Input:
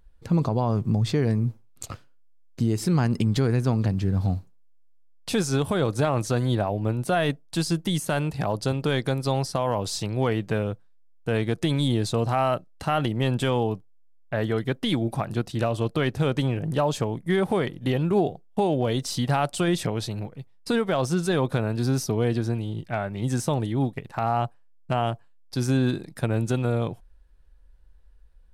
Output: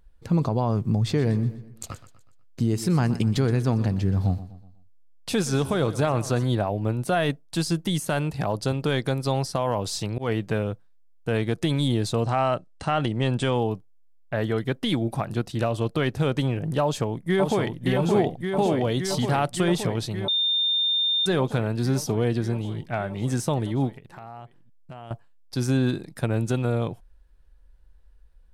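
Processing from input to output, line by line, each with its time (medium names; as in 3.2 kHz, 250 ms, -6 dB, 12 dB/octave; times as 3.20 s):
0.98–6.44 s: feedback delay 123 ms, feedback 44%, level -15.5 dB
10.00–10.41 s: slow attack 121 ms
12.24–13.56 s: brick-wall FIR low-pass 10 kHz
16.82–17.85 s: echo throw 570 ms, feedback 80%, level -4 dB
20.28–21.26 s: bleep 3.62 kHz -20 dBFS
23.94–25.11 s: compression 3:1, threshold -43 dBFS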